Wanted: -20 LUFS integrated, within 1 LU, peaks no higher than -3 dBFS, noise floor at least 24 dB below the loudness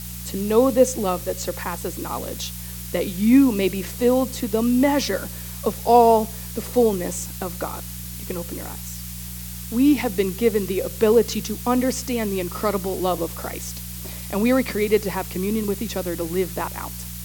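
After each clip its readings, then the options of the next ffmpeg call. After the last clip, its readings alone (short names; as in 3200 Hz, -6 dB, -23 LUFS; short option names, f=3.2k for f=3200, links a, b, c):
hum 60 Hz; harmonics up to 180 Hz; hum level -33 dBFS; noise floor -34 dBFS; noise floor target -47 dBFS; loudness -22.5 LUFS; peak -3.0 dBFS; loudness target -20.0 LUFS
-> -af "bandreject=f=60:t=h:w=4,bandreject=f=120:t=h:w=4,bandreject=f=180:t=h:w=4"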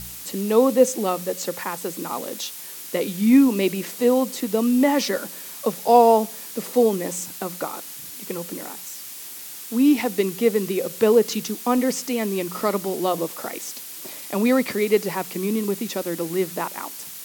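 hum none; noise floor -37 dBFS; noise floor target -46 dBFS
-> -af "afftdn=nr=9:nf=-37"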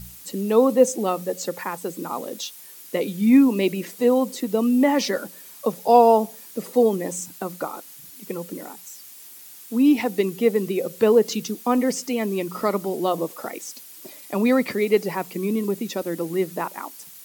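noise floor -44 dBFS; noise floor target -46 dBFS
-> -af "afftdn=nr=6:nf=-44"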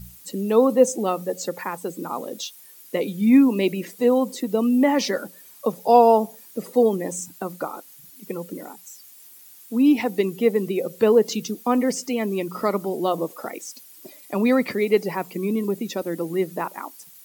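noise floor -47 dBFS; loudness -22.0 LUFS; peak -3.0 dBFS; loudness target -20.0 LUFS
-> -af "volume=2dB,alimiter=limit=-3dB:level=0:latency=1"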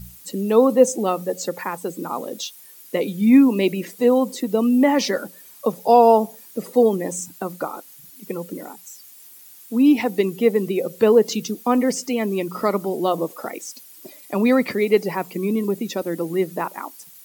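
loudness -20.0 LUFS; peak -3.0 dBFS; noise floor -45 dBFS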